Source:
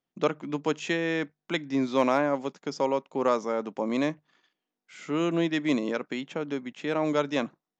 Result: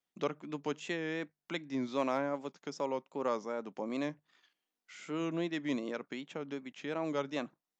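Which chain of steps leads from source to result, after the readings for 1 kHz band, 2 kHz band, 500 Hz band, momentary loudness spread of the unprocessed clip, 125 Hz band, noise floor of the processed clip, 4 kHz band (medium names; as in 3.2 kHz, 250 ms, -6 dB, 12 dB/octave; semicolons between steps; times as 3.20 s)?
-9.0 dB, -9.0 dB, -9.0 dB, 8 LU, -9.0 dB, under -85 dBFS, -8.5 dB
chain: vibrato 2.6 Hz 76 cents; tape noise reduction on one side only encoder only; trim -9 dB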